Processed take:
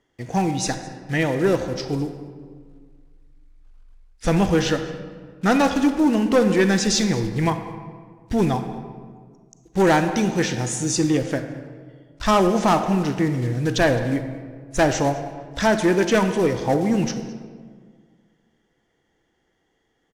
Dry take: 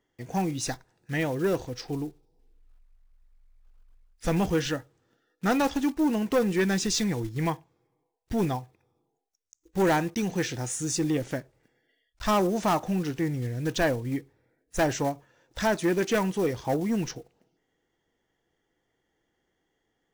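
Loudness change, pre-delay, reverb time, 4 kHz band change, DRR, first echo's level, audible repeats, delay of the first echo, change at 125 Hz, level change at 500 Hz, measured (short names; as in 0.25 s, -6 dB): +7.0 dB, 34 ms, 1.8 s, +7.0 dB, 8.0 dB, -21.5 dB, 1, 0.213 s, +7.0 dB, +7.0 dB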